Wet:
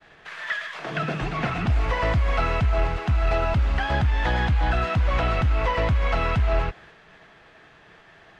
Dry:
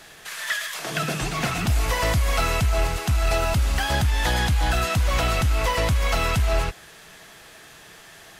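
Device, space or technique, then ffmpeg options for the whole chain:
hearing-loss simulation: -af "lowpass=2400,agate=range=-33dB:threshold=-45dB:ratio=3:detection=peak"

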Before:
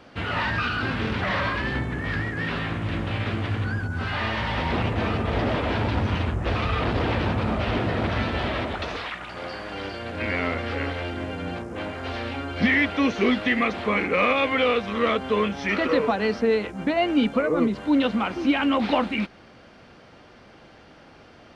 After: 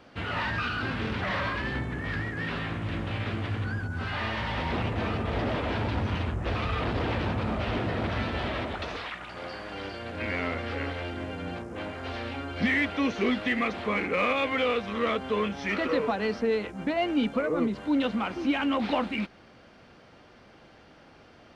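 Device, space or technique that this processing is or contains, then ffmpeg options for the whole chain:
parallel distortion: -filter_complex "[0:a]asplit=2[link_01][link_02];[link_02]asoftclip=type=hard:threshold=-23dB,volume=-13dB[link_03];[link_01][link_03]amix=inputs=2:normalize=0,volume=-6dB"

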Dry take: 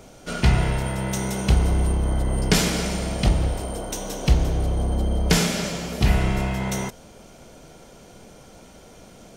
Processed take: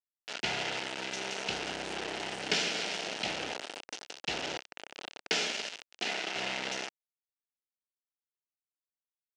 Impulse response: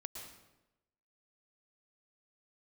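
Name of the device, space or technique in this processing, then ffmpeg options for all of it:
hand-held game console: -filter_complex "[0:a]asettb=1/sr,asplit=3[link_01][link_02][link_03];[link_01]atrim=end=4.574[link_04];[link_02]atrim=start=4.57:end=6.36,asetpts=PTS-STARTPTS,afade=type=in:duration=0.004:curve=qsin,afade=type=out:start_time=1.786:duration=0.004:curve=qsin,highpass=frequency=200:width=0.5412,highpass=frequency=200:width=1.3066[link_05];[link_03]atrim=start=6.356[link_06];[link_04][link_05]acrossfade=duration=0.004:curve1=hsin:curve2=qsin[link_07];[link_07][link_06]acrossfade=duration=0.004:curve1=qsin:curve2=hsin,acrusher=bits=3:mix=0:aa=0.000001,highpass=430,equalizer=frequency=540:width_type=q:width=4:gain=-3,equalizer=frequency=1100:width_type=q:width=4:gain=-10,equalizer=frequency=2800:width_type=q:width=4:gain=6,lowpass=frequency=6000:width=0.5412,lowpass=frequency=6000:width=1.3066,volume=-7.5dB"

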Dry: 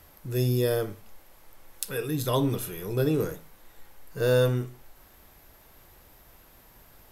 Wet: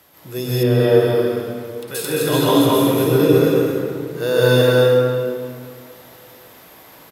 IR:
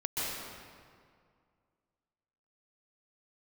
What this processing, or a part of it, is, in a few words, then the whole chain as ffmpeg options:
stadium PA: -filter_complex "[0:a]highpass=170,equalizer=frequency=3500:width_type=o:width=0.49:gain=3.5,aecho=1:1:218.7|288.6:0.631|0.316[link_01];[1:a]atrim=start_sample=2205[link_02];[link_01][link_02]afir=irnorm=-1:irlink=0,asettb=1/sr,asplit=3[link_03][link_04][link_05];[link_03]atrim=end=0.634[link_06];[link_04]atrim=start=0.63:end=1.88,asetpts=PTS-STARTPTS,afade=type=in:duration=0.004:curve=qsin,afade=type=out:start_time=1.246:duration=0.004:curve=qsin,acrossover=split=3200[link_07][link_08];[link_08]acompressor=threshold=-45dB:ratio=4:attack=1:release=60[link_09];[link_07][link_09]amix=inputs=2:normalize=0[link_10];[link_05]atrim=start=1.876[link_11];[link_06][link_10]acrossfade=duration=0.004:curve1=hsin:curve2=qsin[link_12];[link_12][link_11]acrossfade=duration=0.004:curve1=qsin:curve2=hsin,volume=4.5dB"

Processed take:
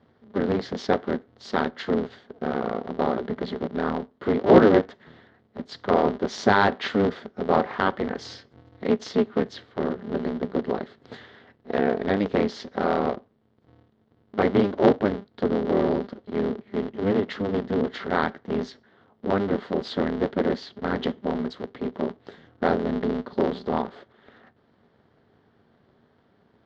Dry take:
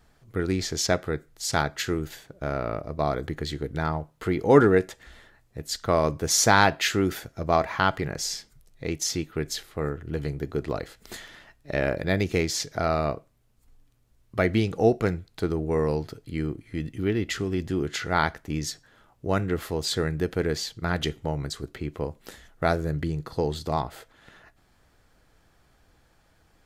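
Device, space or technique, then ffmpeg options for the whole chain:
ring modulator pedal into a guitar cabinet: -filter_complex "[0:a]asettb=1/sr,asplit=3[link_01][link_02][link_03];[link_01]atrim=end=8.094[link_04];[link_02]atrim=start=8.09:end=9.47,asetpts=PTS-STARTPTS,afade=type=in:duration=0.004:curve=qsin,afade=type=out:start_time=1.376:duration=0.004:curve=qsin,aecho=1:1:3:0.9,atrim=end_sample=60858[link_05];[link_03]atrim=start=9.466[link_06];[link_04][link_05]acrossfade=duration=0.004:curve1=hsin:curve2=qsin[link_07];[link_07][link_06]acrossfade=duration=0.004:curve1=qsin:curve2=hsin,aeval=exprs='val(0)*sgn(sin(2*PI*100*n/s))':channel_layout=same,highpass=96,equalizer=frequency=230:width_type=q:width=4:gain=9,equalizer=frequency=420:width_type=q:width=4:gain=9,equalizer=frequency=680:width_type=q:width=4:gain=3,equalizer=frequency=2500:width_type=q:width=4:gain=-9,lowpass=frequency=3800:width=0.5412,lowpass=frequency=3800:width=1.3066,volume=-1.5dB"

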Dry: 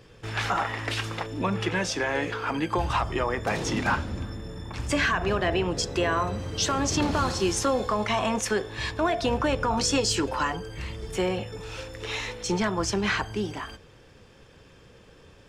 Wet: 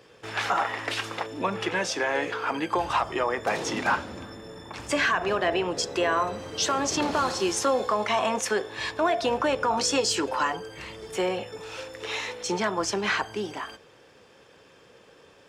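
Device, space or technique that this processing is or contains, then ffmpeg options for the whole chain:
filter by subtraction: -filter_complex "[0:a]asplit=2[link_01][link_02];[link_02]lowpass=570,volume=-1[link_03];[link_01][link_03]amix=inputs=2:normalize=0"

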